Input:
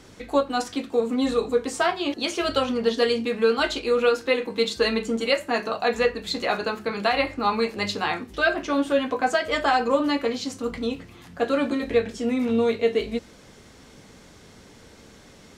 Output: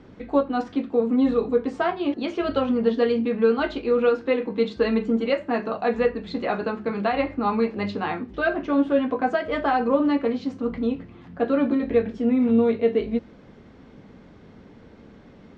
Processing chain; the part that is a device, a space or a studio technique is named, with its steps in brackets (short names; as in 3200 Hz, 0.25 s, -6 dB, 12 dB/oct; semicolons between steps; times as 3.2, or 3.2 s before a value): phone in a pocket (LPF 3700 Hz 12 dB/oct; bell 220 Hz +5 dB 1.3 oct; high shelf 2000 Hz -9 dB); high shelf 7900 Hz -5.5 dB